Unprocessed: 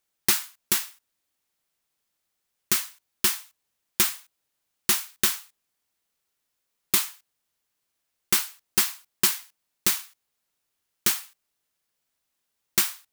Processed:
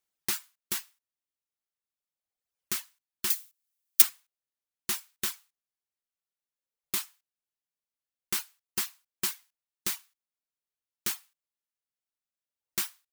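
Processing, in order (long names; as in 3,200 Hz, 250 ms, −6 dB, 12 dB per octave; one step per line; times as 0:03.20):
in parallel at 0 dB: brickwall limiter −16 dBFS, peak gain reduction 10.5 dB
on the sum: reverb reduction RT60 1.9 s
0:03.30–0:04.02: spectral tilt +4 dB per octave
level −12 dB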